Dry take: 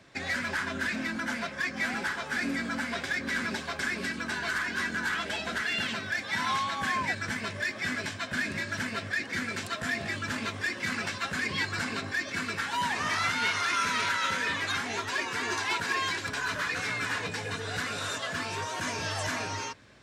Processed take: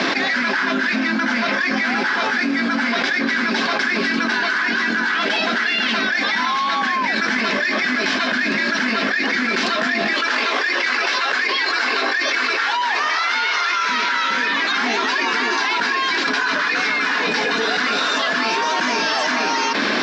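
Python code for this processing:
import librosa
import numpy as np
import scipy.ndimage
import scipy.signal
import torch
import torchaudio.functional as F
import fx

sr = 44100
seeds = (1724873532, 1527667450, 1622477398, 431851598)

y = fx.highpass(x, sr, hz=370.0, slope=24, at=(10.13, 13.89))
y = scipy.signal.sosfilt(scipy.signal.ellip(3, 1.0, 40, [230.0, 5200.0], 'bandpass', fs=sr, output='sos'), y)
y = fx.peak_eq(y, sr, hz=550.0, db=-4.5, octaves=0.34)
y = fx.env_flatten(y, sr, amount_pct=100)
y = y * 10.0 ** (7.0 / 20.0)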